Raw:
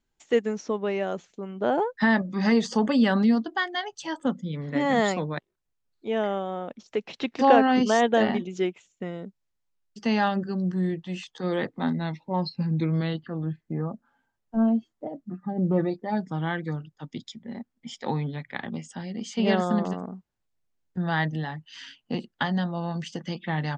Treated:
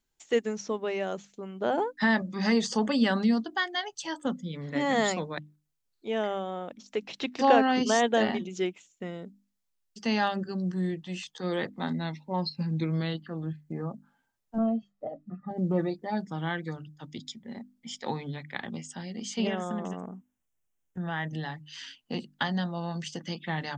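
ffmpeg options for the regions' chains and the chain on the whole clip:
ffmpeg -i in.wav -filter_complex "[0:a]asettb=1/sr,asplit=3[link_01][link_02][link_03];[link_01]atrim=end=14.584[link_04];[link_02]atrim=start=14.58:end=15.51,asetpts=PTS-STARTPTS,afade=type=in:duration=0.004:curve=qsin,afade=type=out:start_time=0.926:duration=0.004:curve=qsin,lowpass=frequency=1900:poles=1,aecho=1:1:1.6:0.63,atrim=end_sample=41013[link_05];[link_03]atrim=start=15.506[link_06];[link_04][link_05]acrossfade=duration=0.004:curve1=hsin:curve2=qsin[link_07];[link_07][link_06]acrossfade=duration=0.004:curve1=qsin:curve2=hsin,asettb=1/sr,asplit=3[link_08][link_09][link_10];[link_08]atrim=end=19.474[link_11];[link_09]atrim=start=19.47:end=21.33,asetpts=PTS-STARTPTS,afade=type=in:duration=0.004:curve=qsin,afade=type=out:start_time=1.856:duration=0.004:curve=qsin,acompressor=threshold=-27dB:ratio=2:attack=3.2:release=140:knee=1:detection=peak,asuperstop=centerf=4400:order=4:qfactor=2[link_12];[link_10]atrim=start=21.326[link_13];[link_11][link_12]acrossfade=duration=0.004:curve1=hsin:curve2=qsin[link_14];[link_14][link_13]acrossfade=duration=0.004:curve1=qsin:curve2=hsin,highshelf=frequency=3600:gain=8.5,bandreject=frequency=50:width_type=h:width=6,bandreject=frequency=100:width_type=h:width=6,bandreject=frequency=150:width_type=h:width=6,bandreject=frequency=200:width_type=h:width=6,bandreject=frequency=250:width_type=h:width=6,bandreject=frequency=300:width_type=h:width=6,volume=-3.5dB" out.wav

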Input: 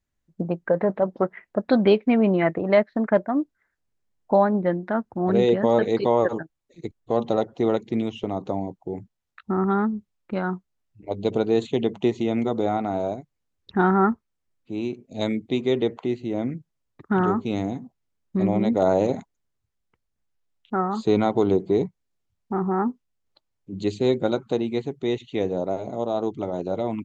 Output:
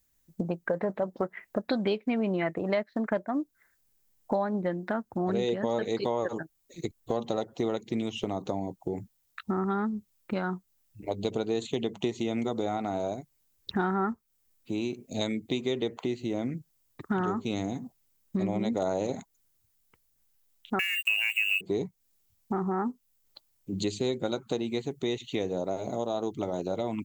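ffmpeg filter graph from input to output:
ffmpeg -i in.wav -filter_complex "[0:a]asettb=1/sr,asplit=3[link_01][link_02][link_03];[link_01]atrim=end=20.794[link_04];[link_02]atrim=start=20.79:end=21.61,asetpts=PTS-STARTPTS,afade=type=in:duration=0.004:curve=qsin,afade=type=out:start_time=0.816:duration=0.004:curve=qsin,lowpass=frequency=2600:width_type=q:width=0.5098,lowpass=frequency=2600:width_type=q:width=0.6013,lowpass=frequency=2600:width_type=q:width=0.9,lowpass=frequency=2600:width_type=q:width=2.563,afreqshift=-3000,aeval=exprs='sgn(val(0))*max(abs(val(0))-0.00501,0)':channel_layout=same[link_05];[link_03]atrim=start=21.606[link_06];[link_04][link_05]acrossfade=duration=0.004:curve1=hsin:curve2=qsin[link_07];[link_07][link_06]acrossfade=duration=0.004:curve1=qsin:curve2=hsin,aemphasis=mode=production:type=75fm,acompressor=threshold=-33dB:ratio=3,volume=3.5dB" out.wav

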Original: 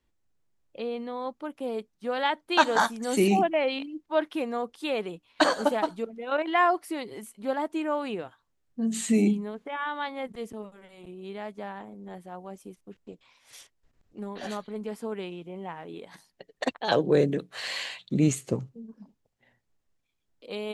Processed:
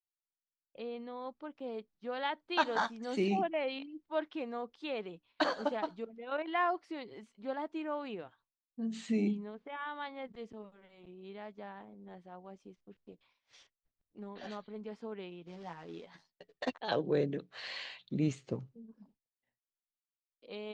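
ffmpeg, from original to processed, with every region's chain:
ffmpeg -i in.wav -filter_complex "[0:a]asettb=1/sr,asplit=3[link_01][link_02][link_03];[link_01]atrim=end=15.464[link_04];[link_02]atrim=start=15.46:end=16.78,asetpts=PTS-STARTPTS,afade=type=in:duration=0.004:curve=qsin,afade=type=out:start_time=1.316:duration=0.004:curve=qsin,acrusher=bits=3:mode=log:mix=0:aa=0.000001,asplit=2[link_05][link_06];[link_06]adelay=12,volume=-4dB[link_07];[link_05][link_07]amix=inputs=2:normalize=0,atrim=end_sample=58212[link_08];[link_03]atrim=start=16.776[link_09];[link_04][link_08]acrossfade=duration=0.004:curve1=hsin:curve2=qsin[link_10];[link_10][link_09]acrossfade=duration=0.004:curve1=qsin:curve2=hsin,lowpass=frequency=5400:width=0.5412,lowpass=frequency=5400:width=1.3066,agate=range=-33dB:threshold=-54dB:ratio=3:detection=peak,volume=-9dB" out.wav

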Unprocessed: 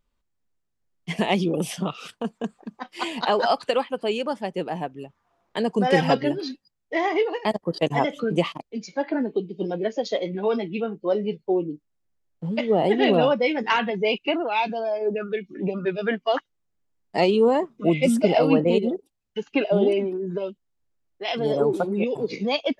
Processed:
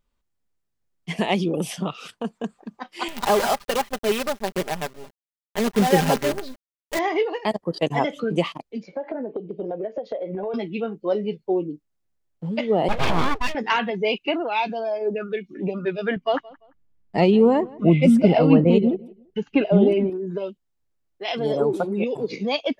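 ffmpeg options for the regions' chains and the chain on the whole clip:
ffmpeg -i in.wav -filter_complex "[0:a]asettb=1/sr,asplit=3[link_01][link_02][link_03];[link_01]atrim=end=3.084[link_04];[link_02]atrim=start=3.08:end=6.99,asetpts=PTS-STARTPTS,afade=type=in:duration=0.004:curve=qsin,afade=type=out:start_time=3.906:duration=0.004:curve=qsin,lowpass=frequency=2300:poles=1,acrusher=bits=5:dc=4:mix=0:aa=0.000001,aecho=1:1:5:0.51,atrim=end_sample=172431[link_05];[link_03]atrim=start=6.986[link_06];[link_04][link_05]acrossfade=duration=0.004:curve1=hsin:curve2=qsin[link_07];[link_07][link_06]acrossfade=duration=0.004:curve1=qsin:curve2=hsin,asettb=1/sr,asplit=3[link_08][link_09][link_10];[link_08]atrim=end=8.834[link_11];[link_09]atrim=start=8.83:end=10.54,asetpts=PTS-STARTPTS,afade=type=in:duration=0.004:curve=qsin,afade=type=out:start_time=1.706:duration=0.004:curve=qsin,lowpass=2200,equalizer=frequency=600:width_type=o:width=1.2:gain=13,acompressor=threshold=-25dB:ratio=10:attack=3.2:release=140:knee=1:detection=peak[link_12];[link_10]atrim=start=10.536[link_13];[link_11][link_12]acrossfade=duration=0.004:curve1=hsin:curve2=qsin[link_14];[link_14][link_13]acrossfade=duration=0.004:curve1=qsin:curve2=hsin,asettb=1/sr,asplit=3[link_15][link_16][link_17];[link_15]atrim=end=12.884[link_18];[link_16]atrim=start=12.88:end=13.55,asetpts=PTS-STARTPTS,afade=type=in:duration=0.004:curve=qsin,afade=type=out:start_time=0.666:duration=0.004:curve=qsin,agate=range=-33dB:threshold=-22dB:ratio=3:release=100:detection=peak,aeval=exprs='abs(val(0))':channel_layout=same[link_19];[link_17]atrim=start=13.546[link_20];[link_18][link_19]acrossfade=duration=0.004:curve1=hsin:curve2=qsin[link_21];[link_21][link_20]acrossfade=duration=0.004:curve1=qsin:curve2=hsin,asettb=1/sr,asplit=3[link_22][link_23][link_24];[link_22]atrim=end=16.164[link_25];[link_23]atrim=start=16.16:end=20.1,asetpts=PTS-STARTPTS,afade=type=in:duration=0.004:curve=qsin,afade=type=out:start_time=3.936:duration=0.004:curve=qsin,bass=frequency=250:gain=11,treble=frequency=4000:gain=-8,asplit=2[link_26][link_27];[link_27]adelay=171,lowpass=frequency=3000:poles=1,volume=-22dB,asplit=2[link_28][link_29];[link_29]adelay=171,lowpass=frequency=3000:poles=1,volume=0.28[link_30];[link_26][link_28][link_30]amix=inputs=3:normalize=0,atrim=end_sample=173754[link_31];[link_24]atrim=start=20.096[link_32];[link_25][link_31]acrossfade=duration=0.004:curve1=hsin:curve2=qsin[link_33];[link_33][link_32]acrossfade=duration=0.004:curve1=qsin:curve2=hsin" out.wav

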